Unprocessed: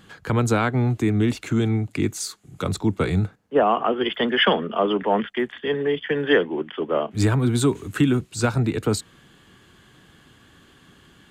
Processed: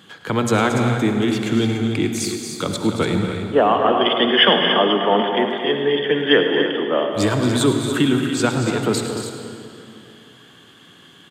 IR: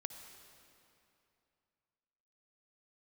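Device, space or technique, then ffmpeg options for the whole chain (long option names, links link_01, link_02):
stadium PA: -filter_complex "[0:a]highpass=160,equalizer=frequency=3300:width_type=o:width=0.3:gain=7.5,aecho=1:1:227.4|288.6:0.316|0.355[link_01];[1:a]atrim=start_sample=2205[link_02];[link_01][link_02]afir=irnorm=-1:irlink=0,asettb=1/sr,asplit=3[link_03][link_04][link_05];[link_03]atrim=end=3.744[link_06];[link_04]atrim=start=3.74:end=4.68,asetpts=PTS-STARTPTS,afade=type=in:duration=0.004:curve=qsin,afade=type=out:start_time=0.936:duration=0.004:curve=qsin,lowpass=frequency=8200:width=0.5412,lowpass=frequency=8200:width=1.3066[link_07];[link_05]atrim=start=4.676[link_08];[link_06][link_07]acrossfade=duration=0.004:curve1=hsin:curve2=qsin[link_09];[link_09][link_08]acrossfade=duration=0.004:curve1=qsin:curve2=hsin,aecho=1:1:107:0.211,volume=6dB"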